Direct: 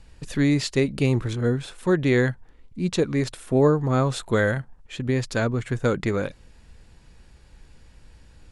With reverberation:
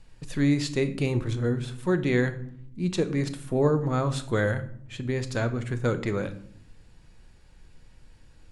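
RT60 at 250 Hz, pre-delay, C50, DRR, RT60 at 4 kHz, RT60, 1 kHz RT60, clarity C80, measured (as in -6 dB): 1.1 s, 5 ms, 14.5 dB, 9.0 dB, 0.40 s, 0.65 s, 0.55 s, 17.5 dB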